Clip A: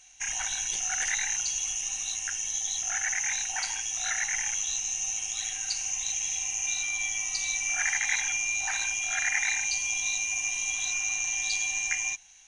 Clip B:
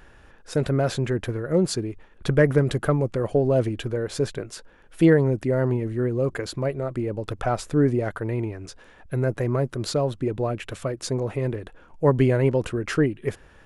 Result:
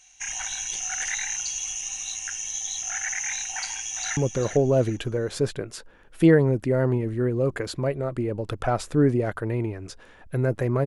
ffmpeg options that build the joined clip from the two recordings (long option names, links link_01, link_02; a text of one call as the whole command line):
ffmpeg -i cue0.wav -i cue1.wav -filter_complex "[0:a]apad=whole_dur=10.86,atrim=end=10.86,atrim=end=4.172[link_01];[1:a]atrim=start=2.958:end=9.65[link_02];[link_01][link_02]acrossfade=duration=0.004:curve1=hsin:curve2=hsin,asplit=2[link_03][link_04];[link_04]afade=type=in:start_time=3.56:duration=0.01,afade=type=out:start_time=4.17:duration=0.01,aecho=0:1:400|800|1200:0.354813|0.106444|0.0319332[link_05];[link_03][link_05]amix=inputs=2:normalize=0" out.wav